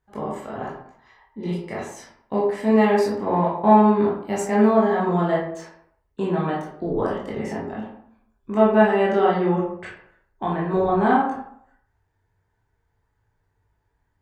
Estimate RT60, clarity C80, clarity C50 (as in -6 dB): 0.65 s, 7.0 dB, 3.0 dB